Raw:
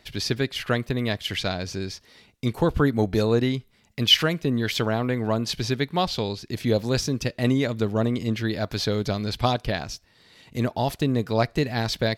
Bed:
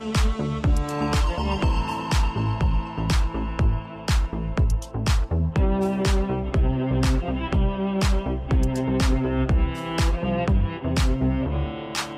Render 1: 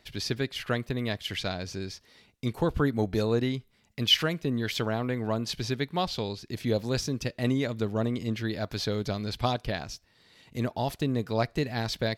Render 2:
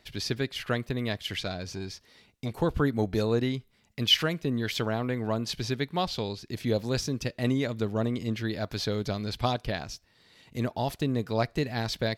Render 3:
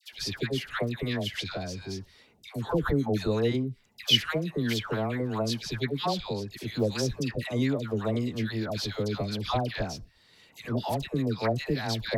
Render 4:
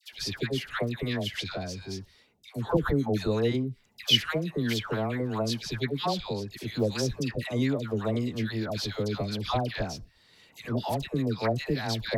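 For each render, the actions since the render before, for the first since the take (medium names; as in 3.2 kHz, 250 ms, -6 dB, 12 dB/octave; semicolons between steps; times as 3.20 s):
trim -5 dB
1.39–2.55 s: transformer saturation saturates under 360 Hz
phase dispersion lows, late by 132 ms, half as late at 960 Hz
1.56–2.77 s: three bands expanded up and down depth 40%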